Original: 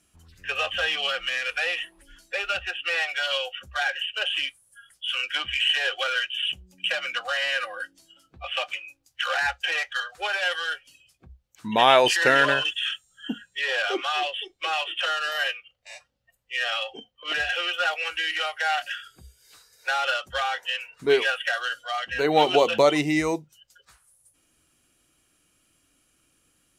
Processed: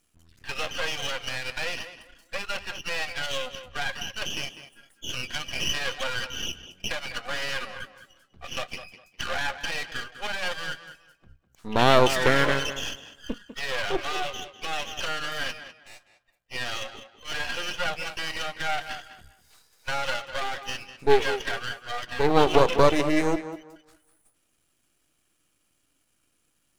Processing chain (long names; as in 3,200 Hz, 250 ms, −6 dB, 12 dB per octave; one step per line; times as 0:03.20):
dynamic equaliser 410 Hz, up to +7 dB, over −37 dBFS, Q 0.96
half-wave rectification
tape delay 201 ms, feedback 26%, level −10.5 dB, low-pass 3,300 Hz
level −1 dB